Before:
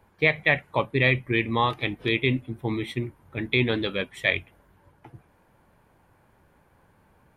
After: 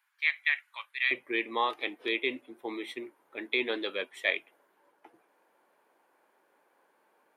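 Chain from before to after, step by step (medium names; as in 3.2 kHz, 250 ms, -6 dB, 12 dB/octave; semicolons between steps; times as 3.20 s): high-pass 1.4 kHz 24 dB/octave, from 1.11 s 330 Hz; trim -5 dB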